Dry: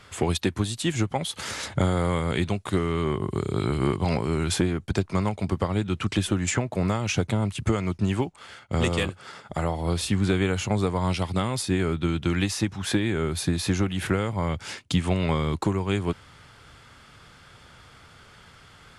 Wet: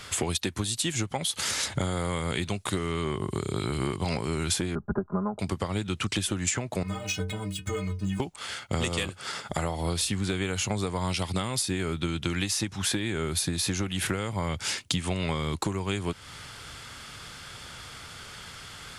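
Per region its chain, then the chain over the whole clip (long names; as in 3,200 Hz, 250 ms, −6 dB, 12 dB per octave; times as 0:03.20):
0:04.75–0:05.39: Butterworth low-pass 1,500 Hz 72 dB per octave + comb filter 4.9 ms, depth 99%
0:06.83–0:08.20: running median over 3 samples + stiff-string resonator 91 Hz, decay 0.42 s, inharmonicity 0.03
whole clip: high-shelf EQ 2,800 Hz +10.5 dB; downward compressor 4 to 1, threshold −31 dBFS; level +4 dB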